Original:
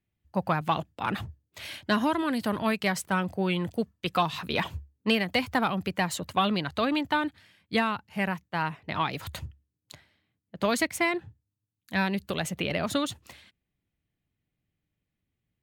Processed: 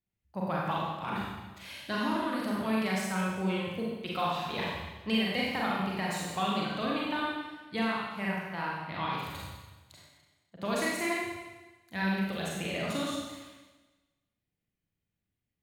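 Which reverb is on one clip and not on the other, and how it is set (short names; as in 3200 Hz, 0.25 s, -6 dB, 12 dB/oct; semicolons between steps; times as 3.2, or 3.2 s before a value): Schroeder reverb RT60 1.2 s, combs from 32 ms, DRR -5 dB; gain -10 dB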